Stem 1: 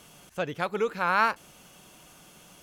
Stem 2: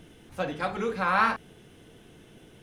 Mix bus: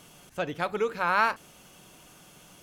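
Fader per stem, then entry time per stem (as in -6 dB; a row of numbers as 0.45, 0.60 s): -0.5, -12.0 dB; 0.00, 0.00 s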